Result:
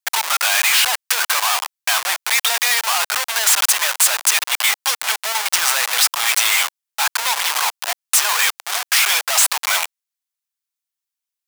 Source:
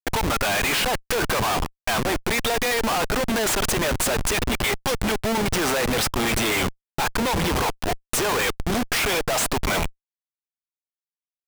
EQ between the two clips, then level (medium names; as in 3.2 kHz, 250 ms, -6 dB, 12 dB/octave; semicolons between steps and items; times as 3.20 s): high-pass 820 Hz 24 dB/octave; treble shelf 2.8 kHz +8 dB; +3.5 dB